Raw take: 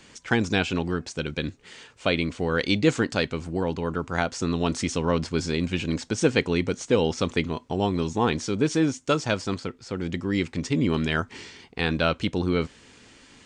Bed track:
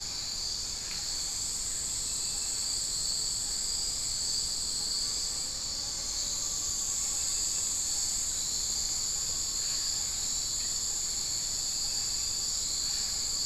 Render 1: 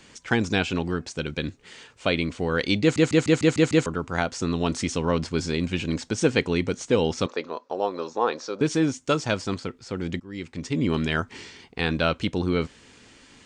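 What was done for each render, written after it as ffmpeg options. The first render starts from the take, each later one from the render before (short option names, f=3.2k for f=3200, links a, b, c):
-filter_complex "[0:a]asettb=1/sr,asplit=3[a][b][c];[a]atrim=end=7.264[d];[b]atrim=start=7.26:end=8.61,asetpts=PTS-STARTPTS,afade=t=in:d=0.004:c=qsin,afade=t=out:st=1.346:d=0.004:c=qsin,highpass=480,equalizer=f=530:t=q:w=4:g=9,equalizer=f=1.2k:t=q:w=4:g=4,equalizer=f=2.1k:t=q:w=4:g=-8,equalizer=f=3.1k:t=q:w=4:g=-10,lowpass=f=5.5k:w=0.5412,lowpass=f=5.5k:w=1.3066[e];[c]atrim=start=8.606[f];[d][e]acrossfade=d=0.004:c1=hsin:c2=qsin[g];[g][f]acrossfade=d=0.004:c1=qsin:c2=hsin,asplit=9[h][i][j][k][l][m][n][o][p];[h]atrim=end=2.962[q];[i]atrim=start=2.808:end=2.962[r];[j]atrim=start=2.808:end=2.962[s];[k]atrim=start=2.808:end=2.962[t];[l]atrim=start=2.808:end=2.962[u];[m]atrim=start=2.808:end=2.962[v];[n]atrim=start=2.808:end=2.962[w];[o]atrim=start=3.858:end=10.2,asetpts=PTS-STARTPTS,afade=t=out:st=6.338:d=0.004:c=hsin:silence=0.0944061[x];[p]atrim=start=10.2,asetpts=PTS-STARTPTS,afade=t=in:d=0.7:silence=0.0944061[y];[q][r]acrossfade=d=0.004:c1=hsin:c2=hsin[z];[z][s]acrossfade=d=0.004:c1=hsin:c2=hsin[aa];[aa][t]acrossfade=d=0.004:c1=hsin:c2=hsin[ab];[ab][u]acrossfade=d=0.004:c1=hsin:c2=hsin[ac];[ac][v]acrossfade=d=0.004:c1=hsin:c2=hsin[ad];[ad][w]acrossfade=d=0.004:c1=hsin:c2=hsin[ae];[x][y]concat=n=2:v=0:a=1[af];[ae][af]acrossfade=d=0.004:c1=hsin:c2=hsin"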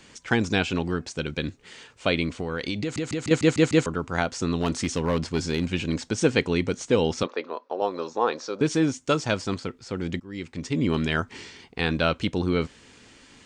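-filter_complex "[0:a]asettb=1/sr,asplit=3[a][b][c];[a]atrim=end=2.334[d];[b]atrim=start=2.33:end=3.31,asetpts=PTS-STARTPTS,afade=t=in:d=0.004:c=qsin,afade=t=out:st=0.976:d=0.004:c=qsin,acompressor=threshold=-24dB:ratio=10:attack=3.2:release=140:knee=1:detection=peak[e];[c]atrim=start=3.306[f];[d][e]acrossfade=d=0.004:c1=hsin:c2=qsin[g];[g][f]acrossfade=d=0.004:c1=qsin:c2=hsin,asplit=3[h][i][j];[h]afade=t=out:st=4.59:d=0.02[k];[i]asoftclip=type=hard:threshold=-17dB,afade=t=in:st=4.59:d=0.02,afade=t=out:st=5.72:d=0.02[l];[j]afade=t=in:st=5.72:d=0.02[m];[k][l][m]amix=inputs=3:normalize=0,asettb=1/sr,asplit=3[n][o][p];[n]atrim=end=7.234[q];[o]atrim=start=7.23:end=7.82,asetpts=PTS-STARTPTS,afade=t=in:d=0.004:c=qsin,afade=t=out:st=0.586:d=0.004:c=qsin,highpass=250,lowpass=3.8k[r];[p]atrim=start=7.816[s];[q][r]acrossfade=d=0.004:c1=hsin:c2=qsin[t];[t][s]acrossfade=d=0.004:c1=qsin:c2=hsin"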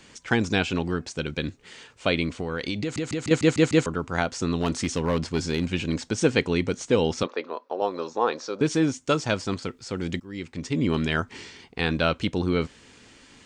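-filter_complex "[0:a]asettb=1/sr,asplit=3[a][b][c];[a]atrim=end=9.624[d];[b]atrim=start=9.62:end=10.32,asetpts=PTS-STARTPTS,afade=t=in:d=0.004:c=qsin,afade=t=out:st=0.696:d=0.004:c=qsin,highshelf=f=4.2k:g=6.5[e];[c]atrim=start=10.316[f];[d][e]acrossfade=d=0.004:c1=hsin:c2=qsin[g];[g][f]acrossfade=d=0.004:c1=qsin:c2=hsin"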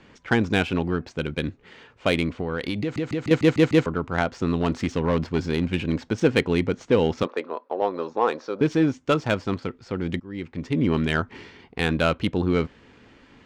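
-filter_complex "[0:a]asplit=2[a][b];[b]asoftclip=type=hard:threshold=-15.5dB,volume=-10.5dB[c];[a][c]amix=inputs=2:normalize=0,adynamicsmooth=sensitivity=1:basefreq=2.6k"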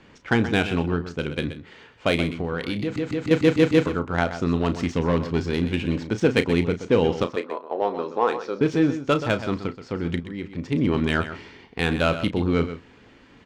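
-filter_complex "[0:a]asplit=2[a][b];[b]adelay=35,volume=-11.5dB[c];[a][c]amix=inputs=2:normalize=0,asplit=2[d][e];[e]aecho=0:1:127:0.266[f];[d][f]amix=inputs=2:normalize=0"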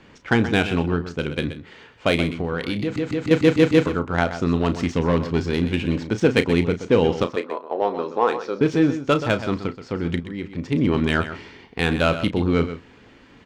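-af "volume=2dB"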